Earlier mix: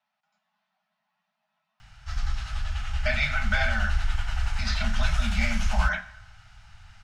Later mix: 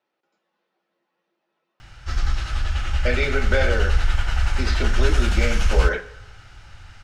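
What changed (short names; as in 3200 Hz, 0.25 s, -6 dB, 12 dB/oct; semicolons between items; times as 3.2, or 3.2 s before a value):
background +6.0 dB; master: remove Chebyshev band-stop 230–620 Hz, order 5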